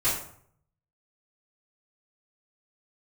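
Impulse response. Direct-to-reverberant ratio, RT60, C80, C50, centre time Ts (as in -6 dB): -13.0 dB, 0.60 s, 8.5 dB, 4.0 dB, 41 ms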